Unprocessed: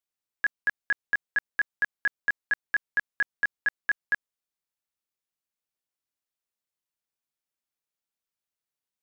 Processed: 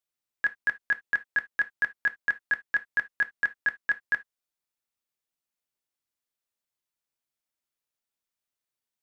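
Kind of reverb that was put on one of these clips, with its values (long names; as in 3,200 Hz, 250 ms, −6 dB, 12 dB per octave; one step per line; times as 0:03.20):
reverb whose tail is shaped and stops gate 90 ms falling, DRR 9.5 dB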